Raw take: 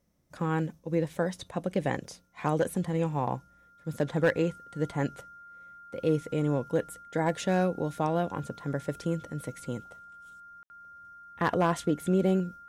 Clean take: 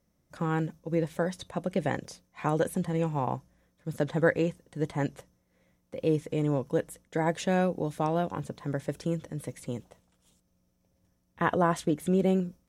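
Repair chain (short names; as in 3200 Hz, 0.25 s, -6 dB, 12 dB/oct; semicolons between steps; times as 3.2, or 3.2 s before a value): clip repair -17 dBFS; notch 1400 Hz, Q 30; room tone fill 10.63–10.7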